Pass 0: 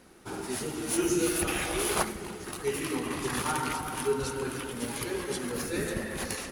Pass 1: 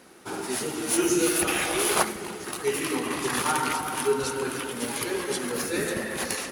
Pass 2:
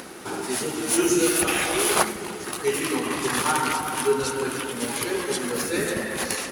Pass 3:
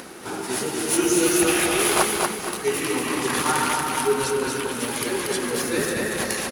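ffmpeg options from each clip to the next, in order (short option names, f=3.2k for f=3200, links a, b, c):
-af "highpass=f=260:p=1,volume=5.5dB"
-af "acompressor=mode=upward:threshold=-33dB:ratio=2.5,volume=2.5dB"
-af "aecho=1:1:235|470|705|940:0.668|0.227|0.0773|0.0263"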